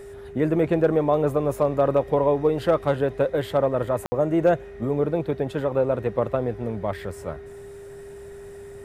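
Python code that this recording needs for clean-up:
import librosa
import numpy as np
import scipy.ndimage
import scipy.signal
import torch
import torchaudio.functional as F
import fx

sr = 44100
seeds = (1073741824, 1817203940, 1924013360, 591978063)

y = fx.fix_declip(x, sr, threshold_db=-10.0)
y = fx.notch(y, sr, hz=400.0, q=30.0)
y = fx.fix_ambience(y, sr, seeds[0], print_start_s=7.5, print_end_s=8.0, start_s=4.06, end_s=4.12)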